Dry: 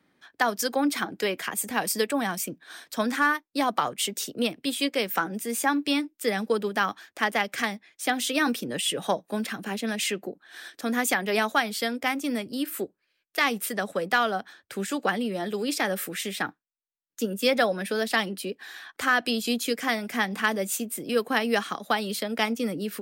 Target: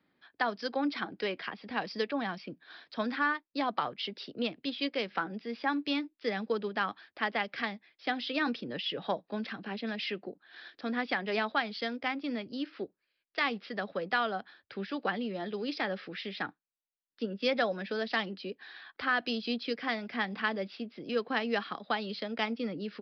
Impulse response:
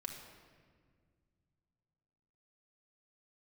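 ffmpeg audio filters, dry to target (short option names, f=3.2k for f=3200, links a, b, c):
-af "aresample=11025,aresample=44100,volume=-6.5dB"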